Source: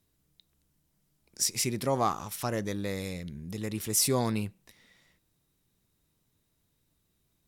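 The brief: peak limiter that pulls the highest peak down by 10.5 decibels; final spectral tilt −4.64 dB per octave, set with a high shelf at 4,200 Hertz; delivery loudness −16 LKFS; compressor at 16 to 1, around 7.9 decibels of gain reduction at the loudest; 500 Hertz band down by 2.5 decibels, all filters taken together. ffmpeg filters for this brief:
ffmpeg -i in.wav -af "equalizer=frequency=500:width_type=o:gain=-3,highshelf=frequency=4200:gain=-8.5,acompressor=threshold=-31dB:ratio=16,volume=26dB,alimiter=limit=-6dB:level=0:latency=1" out.wav

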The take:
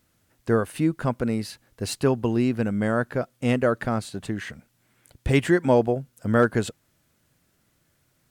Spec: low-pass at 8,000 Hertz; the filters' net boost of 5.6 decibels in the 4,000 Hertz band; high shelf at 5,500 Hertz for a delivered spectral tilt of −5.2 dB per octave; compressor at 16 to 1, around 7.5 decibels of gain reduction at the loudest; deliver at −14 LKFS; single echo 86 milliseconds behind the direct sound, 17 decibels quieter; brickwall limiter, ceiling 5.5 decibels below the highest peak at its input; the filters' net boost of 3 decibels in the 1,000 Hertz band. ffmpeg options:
ffmpeg -i in.wav -af "lowpass=8000,equalizer=frequency=1000:width_type=o:gain=3.5,equalizer=frequency=4000:width_type=o:gain=3.5,highshelf=frequency=5500:gain=9,acompressor=threshold=-20dB:ratio=16,alimiter=limit=-17.5dB:level=0:latency=1,aecho=1:1:86:0.141,volume=15dB" out.wav

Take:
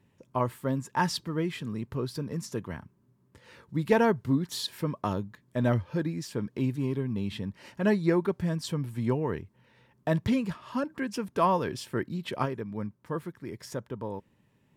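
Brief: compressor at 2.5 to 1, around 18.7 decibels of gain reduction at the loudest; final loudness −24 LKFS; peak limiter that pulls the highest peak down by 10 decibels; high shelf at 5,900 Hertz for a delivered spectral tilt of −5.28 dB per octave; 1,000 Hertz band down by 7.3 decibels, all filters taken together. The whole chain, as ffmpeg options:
ffmpeg -i in.wav -af "equalizer=frequency=1000:width_type=o:gain=-9,highshelf=frequency=5900:gain=5.5,acompressor=threshold=-50dB:ratio=2.5,volume=26dB,alimiter=limit=-14dB:level=0:latency=1" out.wav

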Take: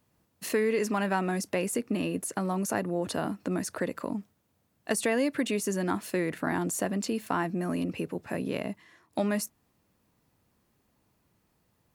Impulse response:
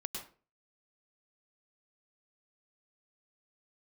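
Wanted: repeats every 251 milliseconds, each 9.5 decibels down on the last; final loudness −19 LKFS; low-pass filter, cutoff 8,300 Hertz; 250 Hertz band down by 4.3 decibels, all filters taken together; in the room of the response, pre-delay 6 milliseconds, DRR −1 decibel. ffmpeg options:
-filter_complex "[0:a]lowpass=8300,equalizer=frequency=250:width_type=o:gain=-6,aecho=1:1:251|502|753|1004:0.335|0.111|0.0365|0.012,asplit=2[link_01][link_02];[1:a]atrim=start_sample=2205,adelay=6[link_03];[link_02][link_03]afir=irnorm=-1:irlink=0,volume=1dB[link_04];[link_01][link_04]amix=inputs=2:normalize=0,volume=9.5dB"

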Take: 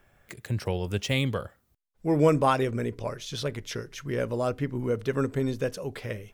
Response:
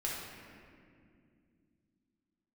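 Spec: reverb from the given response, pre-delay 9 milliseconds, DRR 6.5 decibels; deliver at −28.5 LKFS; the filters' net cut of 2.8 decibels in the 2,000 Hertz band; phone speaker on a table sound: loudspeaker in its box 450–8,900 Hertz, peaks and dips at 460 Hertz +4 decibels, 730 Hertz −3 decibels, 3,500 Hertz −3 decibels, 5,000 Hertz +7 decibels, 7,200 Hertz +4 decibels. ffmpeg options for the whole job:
-filter_complex "[0:a]equalizer=frequency=2000:width_type=o:gain=-3.5,asplit=2[link_01][link_02];[1:a]atrim=start_sample=2205,adelay=9[link_03];[link_02][link_03]afir=irnorm=-1:irlink=0,volume=-10dB[link_04];[link_01][link_04]amix=inputs=2:normalize=0,highpass=frequency=450:width=0.5412,highpass=frequency=450:width=1.3066,equalizer=frequency=460:width_type=q:width=4:gain=4,equalizer=frequency=730:width_type=q:width=4:gain=-3,equalizer=frequency=3500:width_type=q:width=4:gain=-3,equalizer=frequency=5000:width_type=q:width=4:gain=7,equalizer=frequency=7200:width_type=q:width=4:gain=4,lowpass=frequency=8900:width=0.5412,lowpass=frequency=8900:width=1.3066,volume=2dB"

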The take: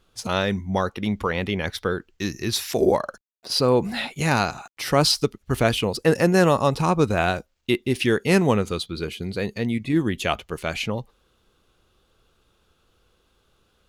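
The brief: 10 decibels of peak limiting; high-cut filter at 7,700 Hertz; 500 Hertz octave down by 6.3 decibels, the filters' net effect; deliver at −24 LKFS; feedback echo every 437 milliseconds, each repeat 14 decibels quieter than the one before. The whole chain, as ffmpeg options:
ffmpeg -i in.wav -af "lowpass=7700,equalizer=frequency=500:width_type=o:gain=-8,alimiter=limit=-17.5dB:level=0:latency=1,aecho=1:1:437|874:0.2|0.0399,volume=5dB" out.wav

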